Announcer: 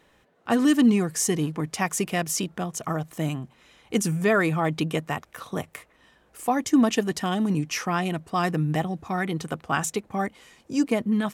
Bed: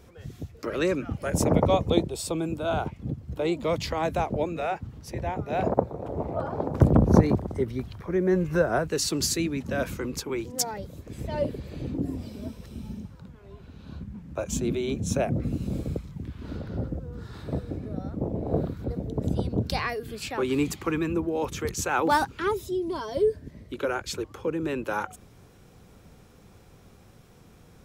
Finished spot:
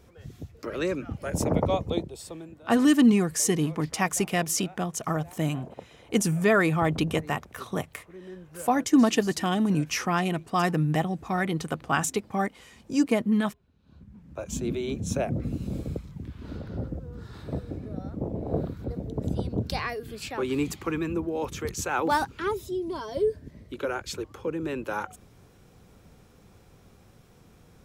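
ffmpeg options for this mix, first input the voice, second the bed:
ffmpeg -i stem1.wav -i stem2.wav -filter_complex "[0:a]adelay=2200,volume=0dB[link_01];[1:a]volume=15dB,afade=type=out:start_time=1.65:duration=0.97:silence=0.141254,afade=type=in:start_time=13.82:duration=0.88:silence=0.125893[link_02];[link_01][link_02]amix=inputs=2:normalize=0" out.wav

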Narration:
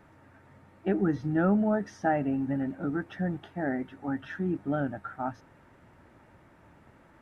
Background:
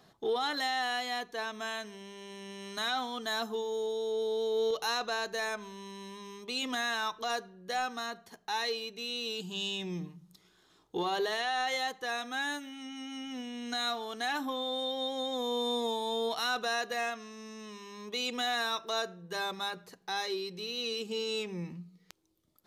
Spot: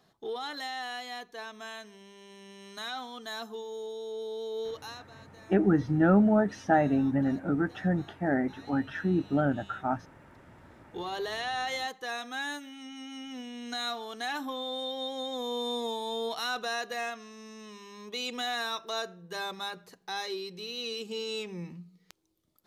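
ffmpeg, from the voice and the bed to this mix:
ffmpeg -i stem1.wav -i stem2.wav -filter_complex "[0:a]adelay=4650,volume=3dB[link_01];[1:a]volume=15dB,afade=type=out:start_time=4.6:duration=0.49:silence=0.158489,afade=type=in:start_time=10.25:duration=1.25:silence=0.1[link_02];[link_01][link_02]amix=inputs=2:normalize=0" out.wav

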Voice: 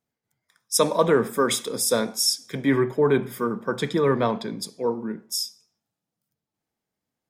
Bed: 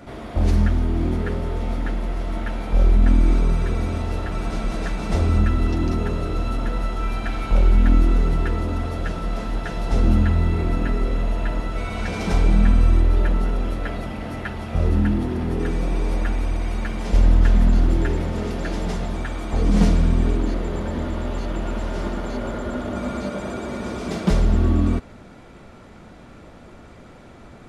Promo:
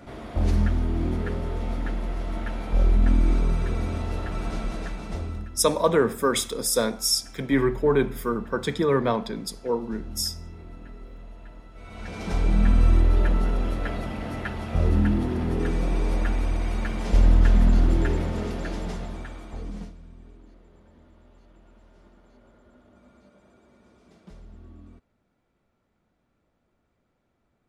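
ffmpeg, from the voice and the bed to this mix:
ffmpeg -i stem1.wav -i stem2.wav -filter_complex "[0:a]adelay=4850,volume=-1dB[link_01];[1:a]volume=15dB,afade=type=out:start_time=4.53:duration=0.97:silence=0.141254,afade=type=in:start_time=11.74:duration=1.13:silence=0.112202,afade=type=out:start_time=18.13:duration=1.8:silence=0.0446684[link_02];[link_01][link_02]amix=inputs=2:normalize=0" out.wav

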